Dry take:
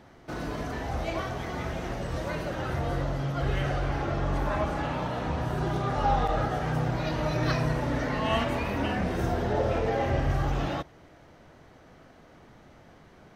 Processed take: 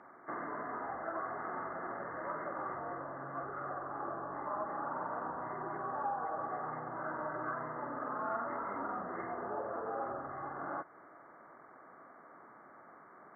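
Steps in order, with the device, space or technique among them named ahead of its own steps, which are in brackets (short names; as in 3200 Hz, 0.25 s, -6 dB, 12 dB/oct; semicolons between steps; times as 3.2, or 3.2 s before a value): hearing aid with frequency lowering (nonlinear frequency compression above 1100 Hz 4:1; compressor 3:1, threshold -34 dBFS, peak gain reduction 11 dB; speaker cabinet 350–6700 Hz, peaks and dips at 490 Hz -4 dB, 1000 Hz +4 dB, 2500 Hz +9 dB); gain -1.5 dB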